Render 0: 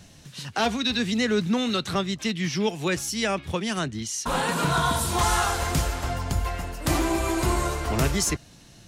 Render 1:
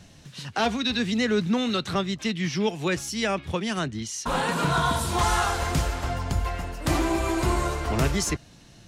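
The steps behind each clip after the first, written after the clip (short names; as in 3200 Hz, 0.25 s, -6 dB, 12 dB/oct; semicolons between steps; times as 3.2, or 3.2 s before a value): high shelf 7600 Hz -7.5 dB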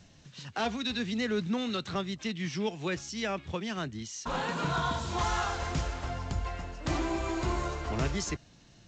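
gain -7 dB; G.722 64 kbps 16000 Hz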